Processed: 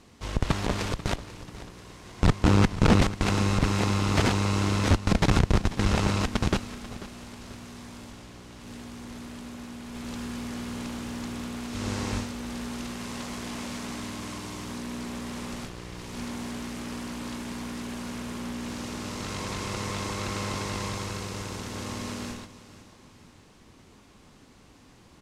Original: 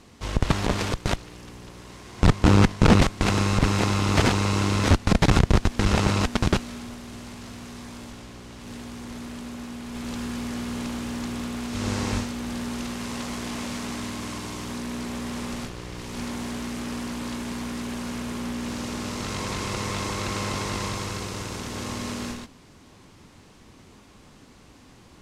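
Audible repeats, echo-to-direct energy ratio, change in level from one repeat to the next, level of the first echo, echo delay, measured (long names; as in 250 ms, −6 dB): 2, −15.0 dB, −6.5 dB, −16.0 dB, 490 ms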